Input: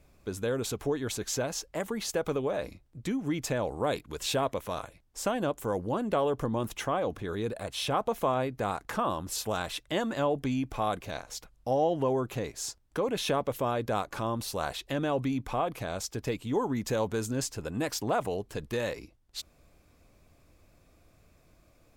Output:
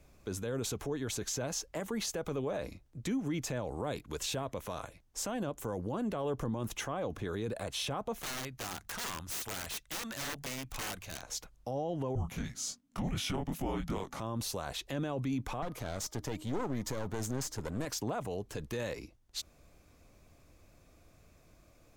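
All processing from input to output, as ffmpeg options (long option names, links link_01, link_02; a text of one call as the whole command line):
ffmpeg -i in.wav -filter_complex "[0:a]asettb=1/sr,asplit=3[link_01][link_02][link_03];[link_01]atrim=end=8.224[link_04];[link_02]atrim=start=8.22:end=11.22,asetpts=PTS-STARTPTS,afade=type=in:duration=0.004:curve=qsin,afade=type=out:start_time=2.996:duration=0.004:curve=qsin,equalizer=frequency=350:width_type=o:width=2.5:gain=-13,bandreject=frequency=50:width_type=h:width=6,bandreject=frequency=100:width_type=h:width=6,bandreject=frequency=150:width_type=h:width=6,bandreject=frequency=200:width_type=h:width=6,aeval=exprs='(mod(44.7*val(0)+1,2)-1)/44.7':channel_layout=same[link_05];[link_03]atrim=start=11.216[link_06];[link_04][link_05]acrossfade=duration=0.004:curve1=hsin:curve2=qsin[link_07];[link_07][link_06]acrossfade=duration=0.004:curve1=qsin:curve2=hsin,asettb=1/sr,asplit=3[link_08][link_09][link_10];[link_08]atrim=end=12.154[link_11];[link_09]atrim=start=12.15:end=14.2,asetpts=PTS-STARTPTS,afade=type=in:duration=0.004:curve=qsin,afade=type=out:start_time=2.046:duration=0.004:curve=qsin,flanger=delay=19.5:depth=4.3:speed=2.7,afreqshift=-290[link_12];[link_10]atrim=start=14.196[link_13];[link_11][link_12]acrossfade=duration=0.004:curve1=hsin:curve2=qsin[link_14];[link_14][link_13]acrossfade=duration=0.004:curve1=qsin:curve2=hsin,asettb=1/sr,asplit=3[link_15][link_16][link_17];[link_15]atrim=end=15.624[link_18];[link_16]atrim=start=15.62:end=17.85,asetpts=PTS-STARTPTS,afade=type=in:duration=0.004:curve=qsin,afade=type=out:start_time=2.226:duration=0.004:curve=qsin,bandreject=frequency=2600:width=6.1,bandreject=frequency=309:width_type=h:width=4,bandreject=frequency=618:width_type=h:width=4,bandreject=frequency=927:width_type=h:width=4,bandreject=frequency=1236:width_type=h:width=4,aeval=exprs='clip(val(0),-1,0.0106)':channel_layout=same[link_19];[link_17]atrim=start=17.846[link_20];[link_18][link_19]acrossfade=duration=0.004:curve1=hsin:curve2=qsin[link_21];[link_21][link_20]acrossfade=duration=0.004:curve1=qsin:curve2=hsin,equalizer=frequency=6300:width_type=o:width=0.29:gain=4,acrossover=split=220[link_22][link_23];[link_23]acompressor=threshold=-32dB:ratio=4[link_24];[link_22][link_24]amix=inputs=2:normalize=0,alimiter=level_in=2.5dB:limit=-24dB:level=0:latency=1:release=18,volume=-2.5dB" out.wav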